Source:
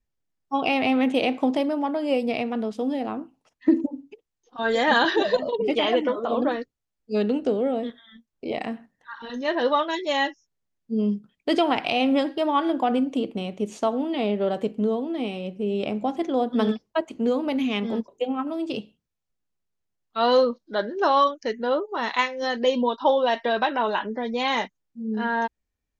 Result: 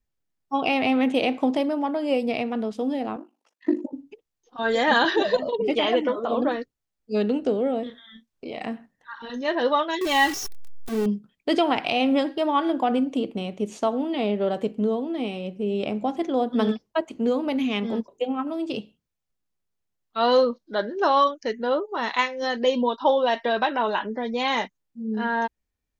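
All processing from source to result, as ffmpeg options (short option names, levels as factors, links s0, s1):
-filter_complex "[0:a]asettb=1/sr,asplit=3[s0][s1][s2];[s0]atrim=end=3.164[s3];[s1]atrim=start=3.16:end=3.93,asetpts=PTS-STARTPTS,afade=t=in:d=0.004:c=qsin,afade=t=out:st=0.766:d=0.004:c=qsin,highpass=f=290:w=0.5412,highpass=f=290:w=1.3066,aeval=exprs='val(0)*sin(2*PI*25*n/s)':c=same[s4];[s2]atrim=start=3.926[s5];[s3][s4]acrossfade=d=0.004:c1=hsin:c2=qsin[s6];[s6][s5]acrossfade=d=0.004:c1=qsin:c2=hsin,asettb=1/sr,asplit=3[s7][s8][s9];[s7]atrim=end=7.834[s10];[s8]atrim=start=7.83:end=8.62,asetpts=PTS-STARTPTS,afade=t=in:d=0.004:c=qsin,afade=t=out:st=0.786:d=0.004:c=qsin,acompressor=threshold=0.0178:ratio=2:attack=3.2:release=140:knee=1:detection=peak,equalizer=f=4400:w=0.39:g=3.5,asplit=2[s11][s12];[s12]adelay=32,volume=0.376[s13];[s11][s13]amix=inputs=2:normalize=0,atrim=end_sample=34839[s14];[s9]atrim=start=8.616[s15];[s10][s14]acrossfade=d=0.004:c1=hsin:c2=qsin[s16];[s16][s15]acrossfade=d=0.004:c1=qsin:c2=hsin,asettb=1/sr,asplit=3[s17][s18][s19];[s17]atrim=end=10.014[s20];[s18]atrim=start=10.01:end=11.06,asetpts=PTS-STARTPTS,afade=t=in:d=0.004:c=qsin,afade=t=out:st=1.046:d=0.004:c=qsin,aeval=exprs='val(0)+0.5*0.0447*sgn(val(0))':c=same,aecho=1:1:2.6:0.58,atrim=end_sample=46305[s21];[s19]atrim=start=11.056[s22];[s20][s21]acrossfade=d=0.004:c1=hsin:c2=qsin[s23];[s23][s22]acrossfade=d=0.004:c1=qsin:c2=hsin"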